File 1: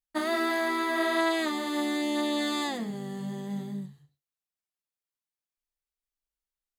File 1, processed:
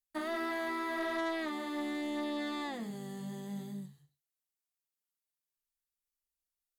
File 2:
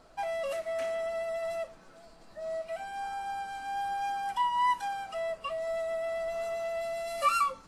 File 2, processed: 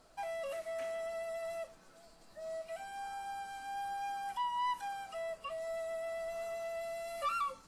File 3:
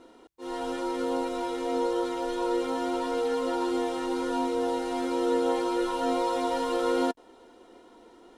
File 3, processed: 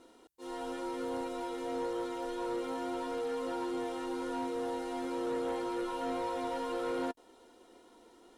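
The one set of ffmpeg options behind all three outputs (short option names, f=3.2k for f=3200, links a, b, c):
-filter_complex "[0:a]acrossover=split=3000[a][b];[b]acompressor=threshold=-53dB:ratio=4:attack=1:release=60[c];[a][c]amix=inputs=2:normalize=0,aemphasis=mode=production:type=cd,asoftclip=type=tanh:threshold=-22.5dB,volume=-6dB"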